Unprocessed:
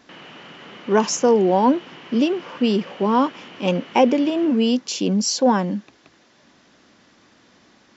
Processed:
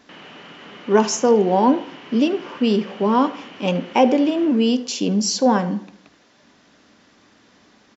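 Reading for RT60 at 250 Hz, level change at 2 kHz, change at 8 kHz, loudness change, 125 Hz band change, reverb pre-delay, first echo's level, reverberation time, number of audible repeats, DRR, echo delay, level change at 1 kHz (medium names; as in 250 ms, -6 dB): 0.75 s, +0.5 dB, no reading, +0.5 dB, +0.5 dB, 3 ms, -19.5 dB, 0.65 s, 1, 10.5 dB, 75 ms, +0.5 dB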